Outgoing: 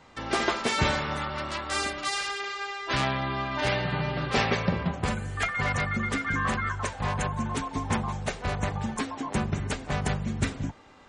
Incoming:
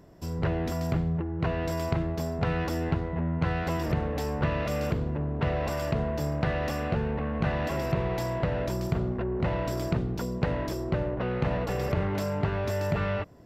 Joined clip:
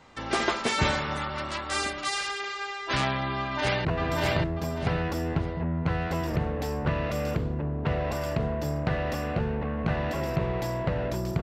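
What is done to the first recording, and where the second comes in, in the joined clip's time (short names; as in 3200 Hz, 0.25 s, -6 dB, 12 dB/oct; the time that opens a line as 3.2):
outgoing
3.38–3.85 echo throw 0.59 s, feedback 30%, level -1.5 dB
3.85 switch to incoming from 1.41 s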